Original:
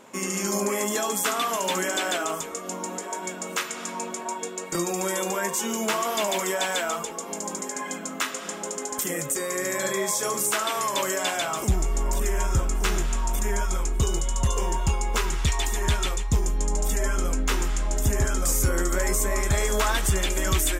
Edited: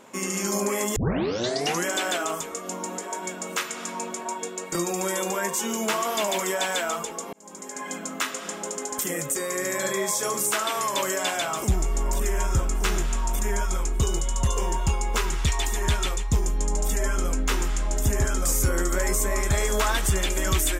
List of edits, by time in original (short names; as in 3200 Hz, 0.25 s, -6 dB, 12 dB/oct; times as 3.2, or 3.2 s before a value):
0.96 tape start 0.89 s
7.33–7.97 fade in